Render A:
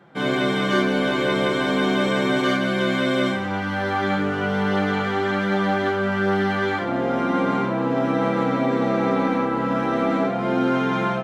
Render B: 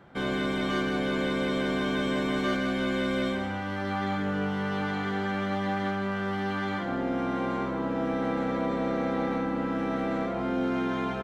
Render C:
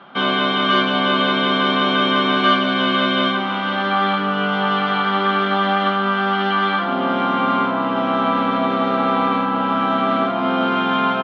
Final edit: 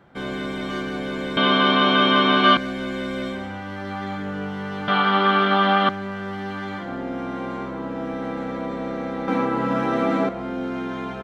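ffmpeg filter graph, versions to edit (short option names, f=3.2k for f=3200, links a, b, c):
-filter_complex "[2:a]asplit=2[a][b];[1:a]asplit=4[c][d][e][f];[c]atrim=end=1.372[g];[a]atrim=start=1.368:end=2.572[h];[d]atrim=start=2.568:end=4.882[i];[b]atrim=start=4.878:end=5.892[j];[e]atrim=start=5.888:end=9.282[k];[0:a]atrim=start=9.278:end=10.292[l];[f]atrim=start=10.288[m];[g][h]acrossfade=d=0.004:c1=hsin:c2=hsin[n];[n][i]acrossfade=d=0.004:c1=hsin:c2=hsin[o];[o][j]acrossfade=d=0.004:c1=hsin:c2=hsin[p];[p][k]acrossfade=d=0.004:c1=hsin:c2=hsin[q];[q][l]acrossfade=d=0.004:c1=hsin:c2=hsin[r];[r][m]acrossfade=d=0.004:c1=hsin:c2=hsin"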